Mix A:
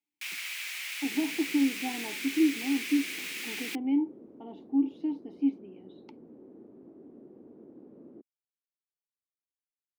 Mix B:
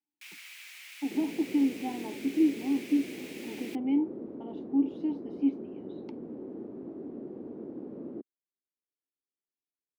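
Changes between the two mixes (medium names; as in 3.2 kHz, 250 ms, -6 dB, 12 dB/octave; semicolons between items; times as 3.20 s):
first sound -10.5 dB; second sound +10.0 dB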